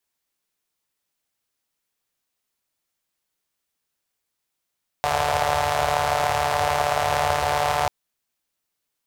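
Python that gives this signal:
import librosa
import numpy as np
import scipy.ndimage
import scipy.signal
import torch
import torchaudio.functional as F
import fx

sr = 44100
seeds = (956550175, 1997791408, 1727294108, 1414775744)

y = fx.engine_four(sr, seeds[0], length_s=2.84, rpm=4400, resonances_hz=(87.0, 710.0))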